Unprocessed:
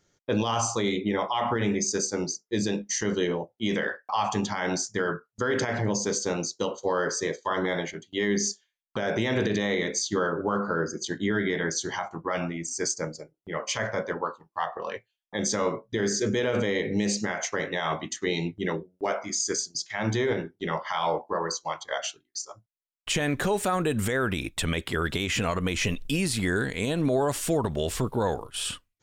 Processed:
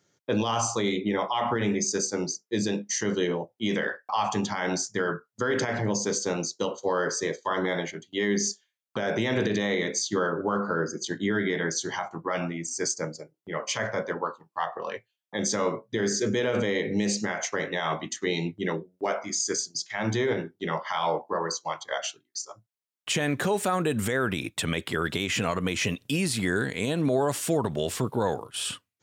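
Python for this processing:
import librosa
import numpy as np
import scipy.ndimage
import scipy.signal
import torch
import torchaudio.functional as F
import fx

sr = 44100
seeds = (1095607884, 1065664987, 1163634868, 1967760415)

y = scipy.signal.sosfilt(scipy.signal.butter(4, 100.0, 'highpass', fs=sr, output='sos'), x)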